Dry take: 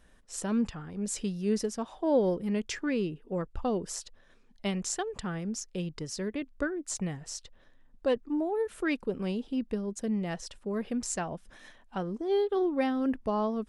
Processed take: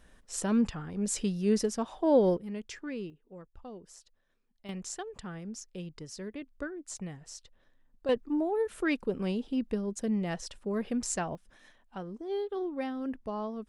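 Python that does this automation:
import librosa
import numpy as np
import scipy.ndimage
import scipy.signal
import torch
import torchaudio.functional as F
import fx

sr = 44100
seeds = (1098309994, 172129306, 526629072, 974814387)

y = fx.gain(x, sr, db=fx.steps((0.0, 2.0), (2.37, -8.0), (3.1, -15.5), (4.69, -6.5), (8.09, 0.5), (11.35, -6.5)))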